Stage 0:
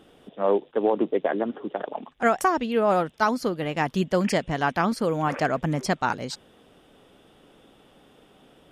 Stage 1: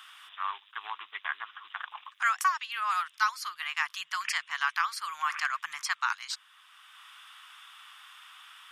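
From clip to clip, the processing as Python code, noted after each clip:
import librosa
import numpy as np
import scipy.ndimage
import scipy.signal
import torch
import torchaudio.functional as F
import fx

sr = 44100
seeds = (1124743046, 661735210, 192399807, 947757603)

y = scipy.signal.sosfilt(scipy.signal.ellip(4, 1.0, 50, 1100.0, 'highpass', fs=sr, output='sos'), x)
y = fx.band_squash(y, sr, depth_pct=40)
y = F.gain(torch.from_numpy(y), 1.5).numpy()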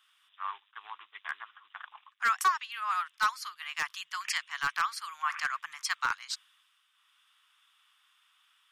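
y = 10.0 ** (-18.0 / 20.0) * (np.abs((x / 10.0 ** (-18.0 / 20.0) + 3.0) % 4.0 - 2.0) - 1.0)
y = fx.band_widen(y, sr, depth_pct=70)
y = F.gain(torch.from_numpy(y), -2.5).numpy()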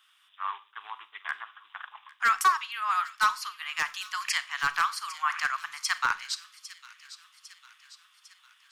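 y = fx.echo_wet_highpass(x, sr, ms=802, feedback_pct=55, hz=2800.0, wet_db=-13.0)
y = fx.rev_schroeder(y, sr, rt60_s=0.35, comb_ms=30, drr_db=15.0)
y = F.gain(torch.from_numpy(y), 3.5).numpy()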